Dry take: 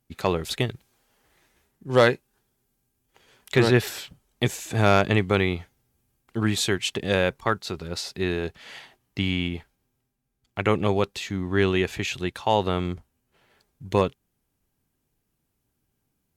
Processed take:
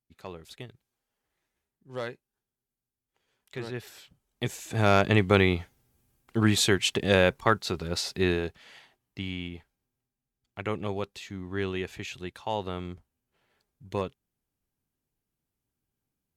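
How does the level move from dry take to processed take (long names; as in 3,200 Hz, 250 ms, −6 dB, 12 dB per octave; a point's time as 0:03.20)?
0:03.74 −17.5 dB
0:04.51 −6.5 dB
0:05.35 +1 dB
0:08.30 +1 dB
0:08.72 −9.5 dB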